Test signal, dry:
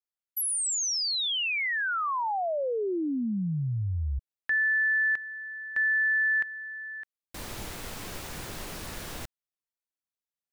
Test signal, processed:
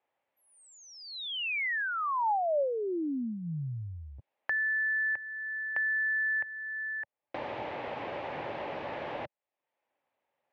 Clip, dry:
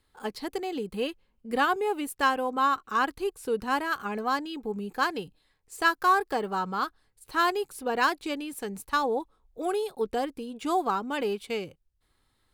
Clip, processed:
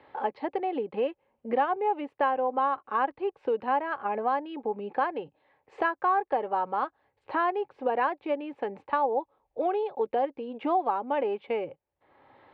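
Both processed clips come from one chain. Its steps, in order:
loudspeaker in its box 140–2,500 Hz, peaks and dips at 190 Hz −10 dB, 570 Hz +10 dB, 840 Hz +9 dB, 1,400 Hz −5 dB
multiband upward and downward compressor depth 70%
level −3.5 dB

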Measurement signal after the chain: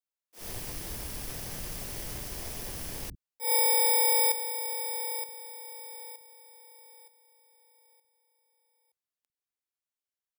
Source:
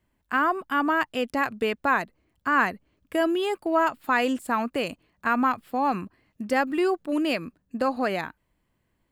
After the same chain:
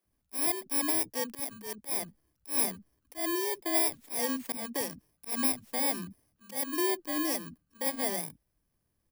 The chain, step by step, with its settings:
samples in bit-reversed order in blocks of 32 samples
volume swells 144 ms
multiband delay without the direct sound highs, lows 50 ms, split 240 Hz
level −5 dB

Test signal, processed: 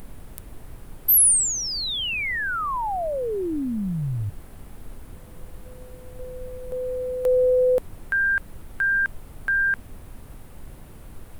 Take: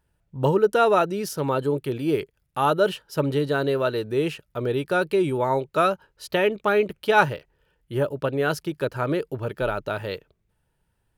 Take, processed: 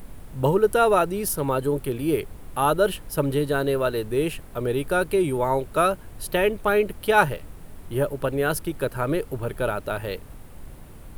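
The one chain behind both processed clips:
background noise brown −38 dBFS
high shelf with overshoot 7,800 Hz +9 dB, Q 1.5

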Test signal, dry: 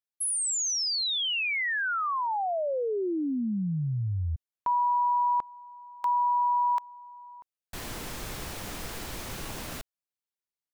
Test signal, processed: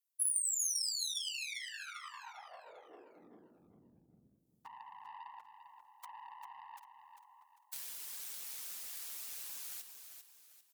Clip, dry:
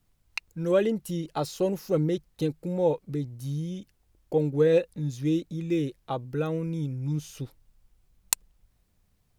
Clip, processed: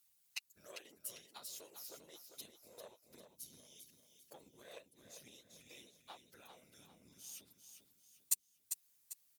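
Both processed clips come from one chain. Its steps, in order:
phases set to zero 133 Hz
downward compressor 3 to 1, threshold −44 dBFS
random phases in short frames
harmonic generator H 2 −20 dB, 6 −32 dB, 7 −30 dB, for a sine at −24.5 dBFS
first difference
on a send: repeating echo 397 ms, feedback 37%, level −8 dB
on the sum: level +8 dB

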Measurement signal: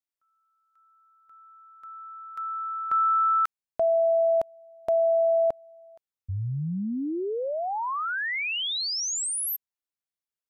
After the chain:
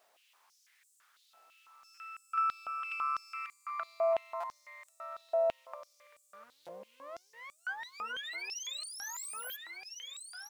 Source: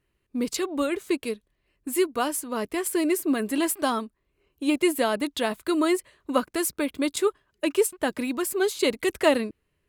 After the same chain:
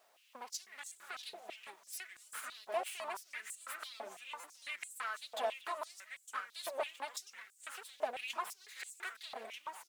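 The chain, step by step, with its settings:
lower of the sound and its delayed copy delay 4.7 ms
downward expander −45 dBFS
high-shelf EQ 4,400 Hz −7.5 dB
downward compressor 12 to 1, threshold −37 dBFS
background noise pink −68 dBFS
far-end echo of a speakerphone 240 ms, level −18 dB
delay with pitch and tempo change per echo 252 ms, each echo −2 semitones, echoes 3, each echo −6 dB
buffer that repeats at 0:00.88/0:01.94/0:04.40/0:06.65, samples 256, times 5
high-pass on a step sequencer 6 Hz 680–7,800 Hz
level −1.5 dB

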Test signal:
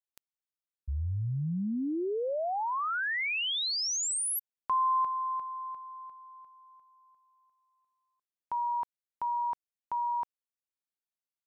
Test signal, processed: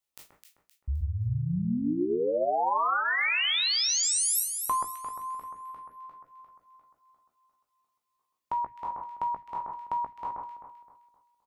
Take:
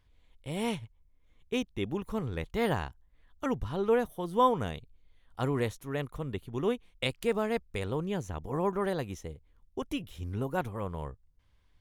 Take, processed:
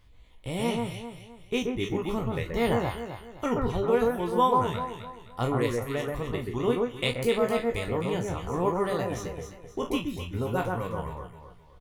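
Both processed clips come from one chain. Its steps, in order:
peak hold with a decay on every bin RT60 0.55 s
reverb reduction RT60 0.96 s
notch filter 1,600 Hz, Q 9.2
in parallel at +2 dB: downward compressor, threshold −44 dBFS
on the sum: double-tracking delay 17 ms −8.5 dB
on a send: delay that swaps between a low-pass and a high-pass 130 ms, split 1,800 Hz, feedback 59%, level −2 dB

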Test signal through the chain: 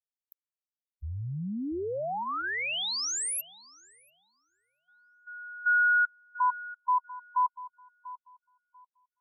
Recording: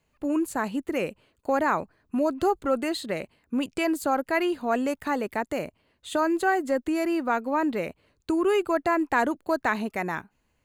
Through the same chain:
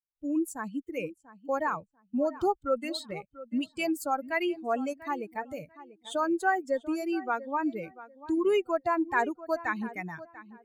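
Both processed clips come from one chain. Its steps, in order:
spectral dynamics exaggerated over time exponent 2
low-shelf EQ 120 Hz −4.5 dB
on a send: feedback echo with a low-pass in the loop 691 ms, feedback 22%, low-pass 2,400 Hz, level −16 dB

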